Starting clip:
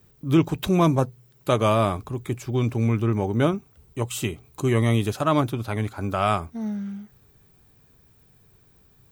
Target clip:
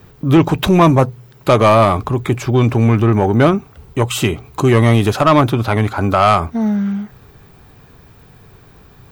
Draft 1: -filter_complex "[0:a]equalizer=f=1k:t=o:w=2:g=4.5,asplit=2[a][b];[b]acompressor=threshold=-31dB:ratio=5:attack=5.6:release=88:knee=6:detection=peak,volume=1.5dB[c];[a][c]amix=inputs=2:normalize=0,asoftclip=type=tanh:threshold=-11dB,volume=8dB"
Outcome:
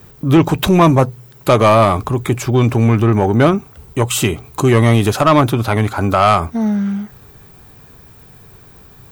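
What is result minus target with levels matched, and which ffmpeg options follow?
8000 Hz band +4.5 dB
-filter_complex "[0:a]equalizer=f=1k:t=o:w=2:g=4.5,asplit=2[a][b];[b]acompressor=threshold=-31dB:ratio=5:attack=5.6:release=88:knee=6:detection=peak,lowpass=6.1k,volume=1.5dB[c];[a][c]amix=inputs=2:normalize=0,asoftclip=type=tanh:threshold=-11dB,volume=8dB"

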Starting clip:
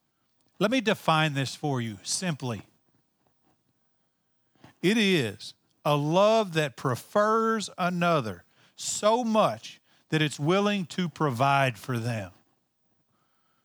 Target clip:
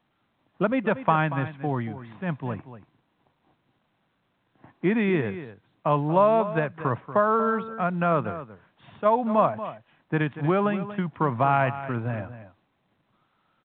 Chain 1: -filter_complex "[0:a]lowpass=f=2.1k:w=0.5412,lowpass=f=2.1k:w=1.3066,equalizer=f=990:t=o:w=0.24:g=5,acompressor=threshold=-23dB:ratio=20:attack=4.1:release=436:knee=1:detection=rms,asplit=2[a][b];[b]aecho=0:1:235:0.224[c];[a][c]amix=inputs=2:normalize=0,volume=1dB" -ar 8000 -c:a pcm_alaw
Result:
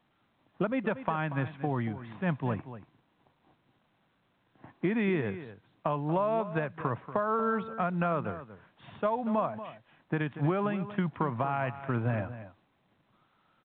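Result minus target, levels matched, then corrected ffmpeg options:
compressor: peak gain reduction +11.5 dB
-filter_complex "[0:a]lowpass=f=2.1k:w=0.5412,lowpass=f=2.1k:w=1.3066,equalizer=f=990:t=o:w=0.24:g=5,asplit=2[a][b];[b]aecho=0:1:235:0.224[c];[a][c]amix=inputs=2:normalize=0,volume=1dB" -ar 8000 -c:a pcm_alaw

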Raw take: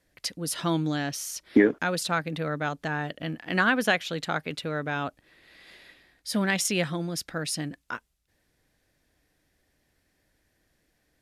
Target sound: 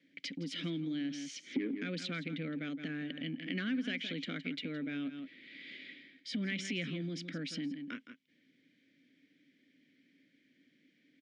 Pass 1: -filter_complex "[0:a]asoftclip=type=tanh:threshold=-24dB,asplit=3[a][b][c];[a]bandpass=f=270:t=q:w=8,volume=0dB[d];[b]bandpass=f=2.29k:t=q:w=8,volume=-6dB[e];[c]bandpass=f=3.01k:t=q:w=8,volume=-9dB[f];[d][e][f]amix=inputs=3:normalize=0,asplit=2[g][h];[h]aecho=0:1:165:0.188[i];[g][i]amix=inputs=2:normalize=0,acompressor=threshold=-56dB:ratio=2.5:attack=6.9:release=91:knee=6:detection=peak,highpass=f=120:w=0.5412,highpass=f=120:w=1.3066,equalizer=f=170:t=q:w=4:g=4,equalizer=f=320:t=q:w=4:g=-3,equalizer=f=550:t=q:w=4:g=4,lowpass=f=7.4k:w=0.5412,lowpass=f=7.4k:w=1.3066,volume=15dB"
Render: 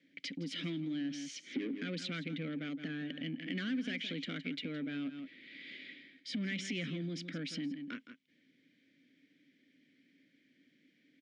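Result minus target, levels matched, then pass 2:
soft clip: distortion +8 dB
-filter_complex "[0:a]asoftclip=type=tanh:threshold=-14.5dB,asplit=3[a][b][c];[a]bandpass=f=270:t=q:w=8,volume=0dB[d];[b]bandpass=f=2.29k:t=q:w=8,volume=-6dB[e];[c]bandpass=f=3.01k:t=q:w=8,volume=-9dB[f];[d][e][f]amix=inputs=3:normalize=0,asplit=2[g][h];[h]aecho=0:1:165:0.188[i];[g][i]amix=inputs=2:normalize=0,acompressor=threshold=-56dB:ratio=2.5:attack=6.9:release=91:knee=6:detection=peak,highpass=f=120:w=0.5412,highpass=f=120:w=1.3066,equalizer=f=170:t=q:w=4:g=4,equalizer=f=320:t=q:w=4:g=-3,equalizer=f=550:t=q:w=4:g=4,lowpass=f=7.4k:w=0.5412,lowpass=f=7.4k:w=1.3066,volume=15dB"

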